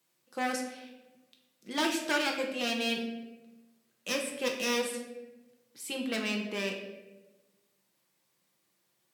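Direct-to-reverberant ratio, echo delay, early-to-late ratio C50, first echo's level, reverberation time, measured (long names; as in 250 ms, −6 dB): 1.0 dB, no echo audible, 5.5 dB, no echo audible, 1.1 s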